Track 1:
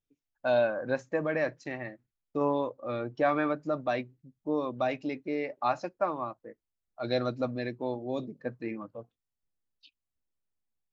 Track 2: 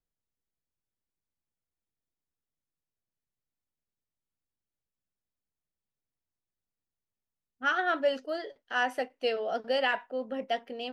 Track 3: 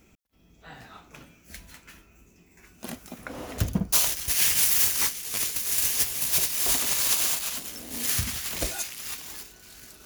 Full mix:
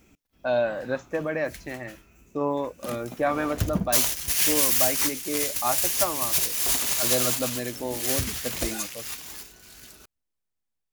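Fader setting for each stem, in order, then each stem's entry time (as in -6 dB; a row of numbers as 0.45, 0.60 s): +1.5 dB, off, 0.0 dB; 0.00 s, off, 0.00 s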